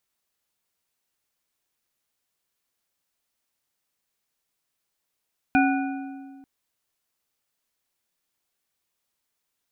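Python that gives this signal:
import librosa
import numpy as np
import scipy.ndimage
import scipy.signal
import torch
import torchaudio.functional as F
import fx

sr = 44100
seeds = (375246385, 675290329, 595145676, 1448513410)

y = fx.strike_metal(sr, length_s=0.89, level_db=-17, body='bar', hz=273.0, decay_s=1.89, tilt_db=2.5, modes=4)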